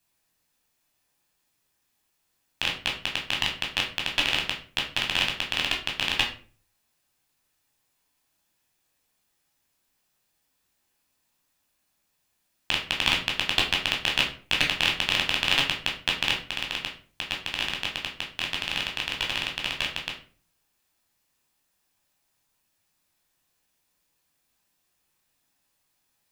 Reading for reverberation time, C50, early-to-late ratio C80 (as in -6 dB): 0.40 s, 8.0 dB, 13.5 dB